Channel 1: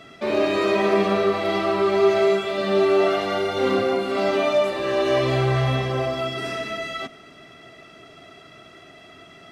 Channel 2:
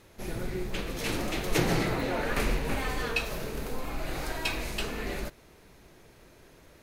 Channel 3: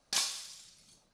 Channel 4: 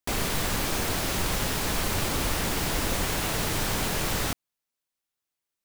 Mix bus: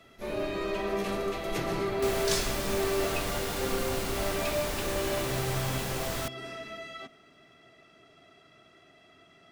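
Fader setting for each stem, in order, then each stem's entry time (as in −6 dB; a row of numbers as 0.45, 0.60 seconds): −12.0, −8.5, −0.5, −7.0 decibels; 0.00, 0.00, 2.15, 1.95 seconds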